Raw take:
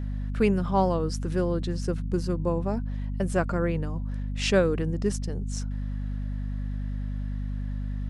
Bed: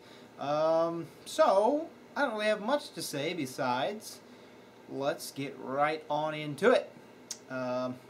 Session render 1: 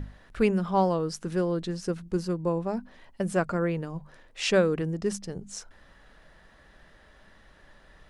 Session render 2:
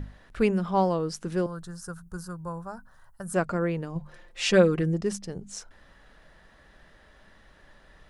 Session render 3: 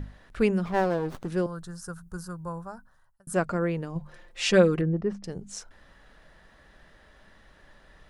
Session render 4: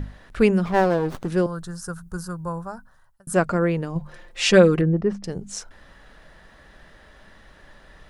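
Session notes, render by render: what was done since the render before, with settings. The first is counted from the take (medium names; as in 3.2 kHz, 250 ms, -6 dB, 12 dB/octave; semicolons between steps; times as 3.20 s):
hum notches 50/100/150/200/250 Hz
1.46–3.34 s: FFT filter 140 Hz 0 dB, 260 Hz -19 dB, 500 Hz -12 dB, 1.5 kHz +4 dB, 2.2 kHz -21 dB, 11 kHz +8 dB; 3.95–5.01 s: comb 5.7 ms, depth 77%
0.65–1.28 s: sliding maximum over 17 samples; 2.58–3.27 s: fade out; 4.81–5.24 s: low-pass 1.6 kHz
trim +6 dB; peak limiter -2 dBFS, peak gain reduction 1.5 dB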